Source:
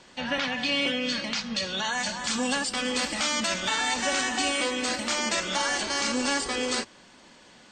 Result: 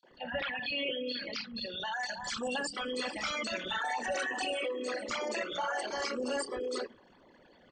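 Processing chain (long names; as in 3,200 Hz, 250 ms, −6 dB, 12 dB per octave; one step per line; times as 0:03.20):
spectral envelope exaggerated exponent 3
three-band delay without the direct sound highs, mids, lows 30/110 ms, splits 200/4,300 Hz
level −6.5 dB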